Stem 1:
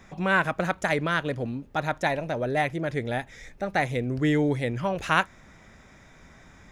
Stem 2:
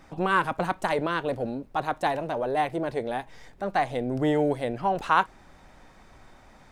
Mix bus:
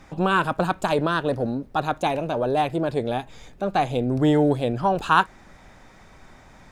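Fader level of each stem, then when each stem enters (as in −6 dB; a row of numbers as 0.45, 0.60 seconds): −2.5, +2.0 decibels; 0.00, 0.00 seconds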